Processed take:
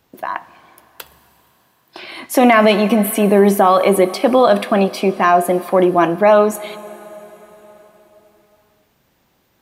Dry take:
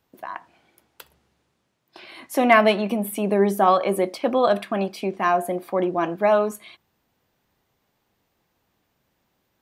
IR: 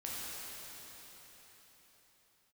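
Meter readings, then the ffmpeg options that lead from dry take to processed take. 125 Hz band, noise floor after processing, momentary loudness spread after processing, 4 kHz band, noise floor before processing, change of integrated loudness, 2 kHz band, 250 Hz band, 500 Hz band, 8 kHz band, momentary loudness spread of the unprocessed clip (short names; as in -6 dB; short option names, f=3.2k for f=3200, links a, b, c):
+9.5 dB, -61 dBFS, 16 LU, +7.5 dB, -73 dBFS, +7.5 dB, +5.5 dB, +9.0 dB, +8.0 dB, +10.5 dB, 13 LU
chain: -filter_complex "[0:a]asplit=2[a][b];[1:a]atrim=start_sample=2205,highshelf=f=4.6k:g=8.5[c];[b][c]afir=irnorm=-1:irlink=0,volume=-20dB[d];[a][d]amix=inputs=2:normalize=0,alimiter=level_in=10.5dB:limit=-1dB:release=50:level=0:latency=1,volume=-1dB"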